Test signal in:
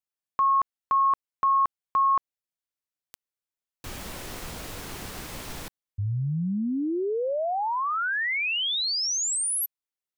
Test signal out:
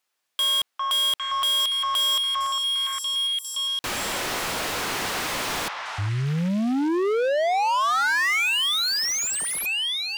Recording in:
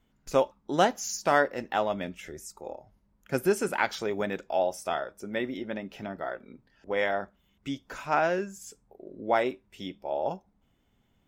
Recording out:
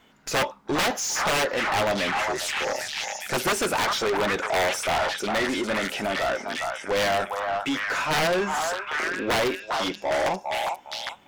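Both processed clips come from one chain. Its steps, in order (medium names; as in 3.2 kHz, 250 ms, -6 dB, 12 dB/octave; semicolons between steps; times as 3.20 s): integer overflow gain 19.5 dB; repeats whose band climbs or falls 403 ms, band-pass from 990 Hz, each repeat 0.7 oct, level -6 dB; overdrive pedal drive 26 dB, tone 4.5 kHz, clips at -17 dBFS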